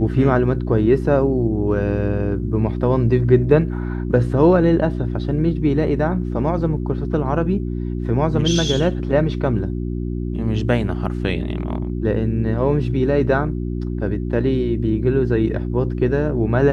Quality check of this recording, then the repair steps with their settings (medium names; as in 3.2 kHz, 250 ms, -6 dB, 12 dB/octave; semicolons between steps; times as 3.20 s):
hum 60 Hz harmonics 6 -24 dBFS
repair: de-hum 60 Hz, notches 6